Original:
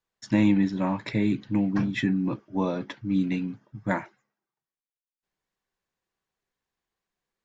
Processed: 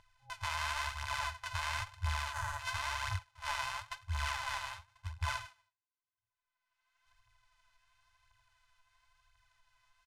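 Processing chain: sample sorter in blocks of 64 samples; gate with hold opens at -50 dBFS; FFT band-reject 170–1100 Hz; phaser 1.3 Hz, delay 4.7 ms, feedback 61%; limiter -18.5 dBFS, peak gain reduction 9 dB; upward compressor, threshold -33 dBFS; varispeed -26%; spectral gain 2.33–2.6, 2000–6000 Hz -8 dB; harmoniser -7 st -14 dB; air absorption 57 m; gain -5 dB

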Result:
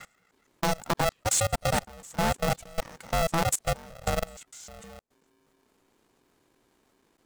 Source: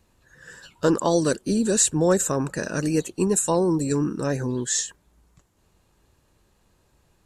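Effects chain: slices in reverse order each 0.156 s, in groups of 4; level quantiser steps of 22 dB; polarity switched at an audio rate 330 Hz; gain -2 dB

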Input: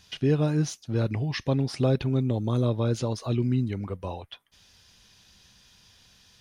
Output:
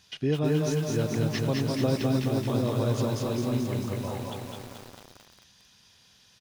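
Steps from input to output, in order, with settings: HPF 110 Hz 6 dB/oct; echo 0.203 s -4.5 dB; lo-fi delay 0.221 s, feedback 80%, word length 7-bit, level -4 dB; gain -2.5 dB

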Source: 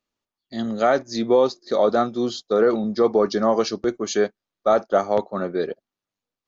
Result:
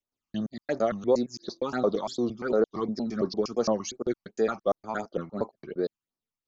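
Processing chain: slices in reverse order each 0.115 s, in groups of 3; phaser stages 8, 2.8 Hz, lowest notch 470–3100 Hz; wow and flutter 120 cents; gain -5 dB

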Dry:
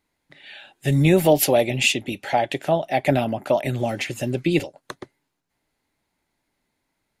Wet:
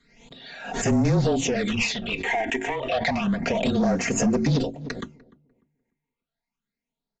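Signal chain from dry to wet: gate with hold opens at -48 dBFS; notches 50/100/150/200/250/300/350/400 Hz; comb 4.2 ms, depth 99%; in parallel at -1.5 dB: limiter -11 dBFS, peak gain reduction 8.5 dB; on the sum: compressor 6:1, threshold -16 dBFS, peak gain reduction 9.5 dB; overloaded stage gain 20 dB; frequency shift -26 Hz; phaser stages 8, 0.3 Hz, lowest notch 160–3600 Hz; on a send: darkening echo 0.297 s, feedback 27%, low-pass 870 Hz, level -20 dB; on the sum: downsampling 16000 Hz; backwards sustainer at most 70 dB/s; gain +1.5 dB

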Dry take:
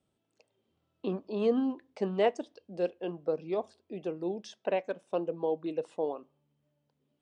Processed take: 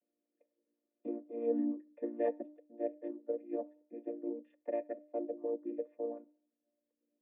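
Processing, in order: chord vocoder major triad, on A#3; vocal tract filter e; bell 300 Hz +6.5 dB 0.21 oct; de-hum 300.1 Hz, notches 4; gain +6 dB

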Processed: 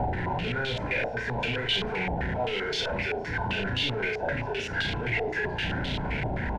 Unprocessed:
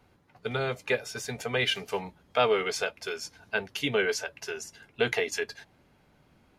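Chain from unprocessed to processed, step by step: infinite clipping; low shelf 180 Hz +10.5 dB; on a send: flutter echo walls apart 6 m, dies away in 0.41 s; on the sum: limiter -24.5 dBFS, peak gain reduction 7.5 dB; Butterworth band-stop 1200 Hz, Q 3.1; doubler 16 ms -11 dB; stepped low-pass 7.7 Hz 760–3500 Hz

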